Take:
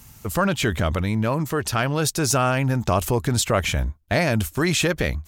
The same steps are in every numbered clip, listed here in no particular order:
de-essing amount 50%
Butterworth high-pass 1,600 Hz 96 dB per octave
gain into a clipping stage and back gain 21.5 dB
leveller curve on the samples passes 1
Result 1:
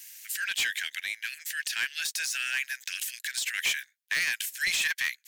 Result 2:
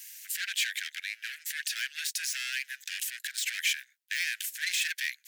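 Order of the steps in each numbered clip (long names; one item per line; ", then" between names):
de-essing, then Butterworth high-pass, then gain into a clipping stage and back, then leveller curve on the samples
gain into a clipping stage and back, then de-essing, then leveller curve on the samples, then Butterworth high-pass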